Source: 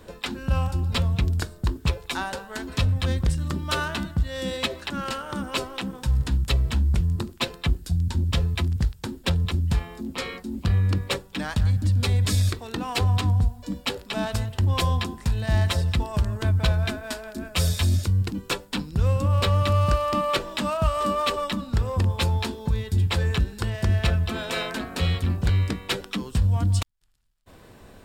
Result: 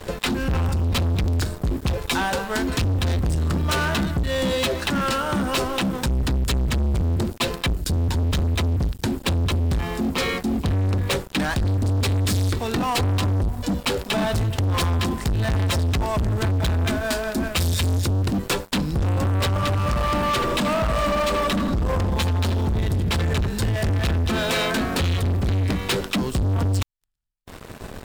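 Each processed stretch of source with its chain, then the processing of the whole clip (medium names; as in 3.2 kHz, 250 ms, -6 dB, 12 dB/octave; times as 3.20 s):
19.48–23.48 s: compression 2:1, threshold -25 dBFS + filtered feedback delay 79 ms, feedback 71%, low-pass 1.3 kHz, level -4 dB
whole clip: bass shelf 320 Hz +3 dB; waveshaping leveller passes 5; compression, threshold -14 dBFS; trim -6 dB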